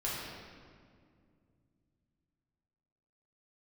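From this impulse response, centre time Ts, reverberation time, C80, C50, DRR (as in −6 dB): 116 ms, 2.2 s, 0.5 dB, −1.5 dB, −7.5 dB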